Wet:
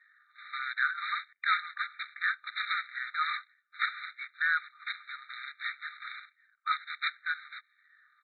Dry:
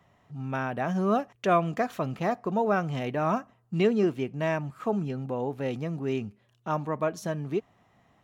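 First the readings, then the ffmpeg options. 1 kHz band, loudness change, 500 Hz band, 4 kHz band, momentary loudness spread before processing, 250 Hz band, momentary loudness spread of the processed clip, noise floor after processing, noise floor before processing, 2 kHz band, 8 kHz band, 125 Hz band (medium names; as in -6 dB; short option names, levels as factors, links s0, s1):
-5.0 dB, -4.5 dB, under -40 dB, +7.0 dB, 9 LU, under -40 dB, 13 LU, -72 dBFS, -66 dBFS, +7.5 dB, no reading, under -40 dB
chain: -af "afftfilt=real='re*pow(10,16/40*sin(2*PI*(0.5*log(max(b,1)*sr/1024/100)/log(2)-(-1.4)*(pts-256)/sr)))':imag='im*pow(10,16/40*sin(2*PI*(0.5*log(max(b,1)*sr/1024/100)/log(2)-(-1.4)*(pts-256)/sr)))':win_size=1024:overlap=0.75,highpass=f=280:t=q:w=0.5412,highpass=f=280:t=q:w=1.307,lowpass=f=2100:t=q:w=0.5176,lowpass=f=2100:t=q:w=0.7071,lowpass=f=2100:t=q:w=1.932,afreqshift=-120,aresample=8000,acrusher=bits=2:mode=log:mix=0:aa=0.000001,aresample=44100,afftfilt=real='re*eq(mod(floor(b*sr/1024/1200),2),1)':imag='im*eq(mod(floor(b*sr/1024/1200),2),1)':win_size=1024:overlap=0.75,volume=1.68"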